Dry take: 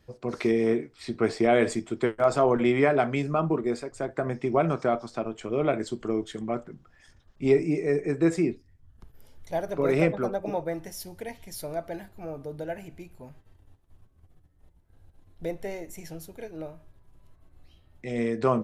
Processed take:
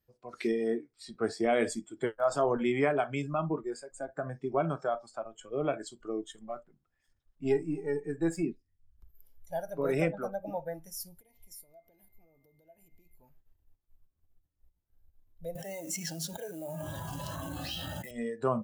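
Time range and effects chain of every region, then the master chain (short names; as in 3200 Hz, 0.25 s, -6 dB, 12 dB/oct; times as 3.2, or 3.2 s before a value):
6.32–8.43 half-wave gain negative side -3 dB + notch 5900 Hz, Q 11
11.19–13.15 bell 1600 Hz -10 dB 0.68 oct + compressor 20:1, threshold -42 dBFS + whine 2100 Hz -58 dBFS
15.55–18.11 Chebyshev band-pass 200–5900 Hz + short-mantissa float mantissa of 2-bit + fast leveller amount 100%
whole clip: spectral noise reduction 15 dB; high shelf 8200 Hz +9 dB; gain -5.5 dB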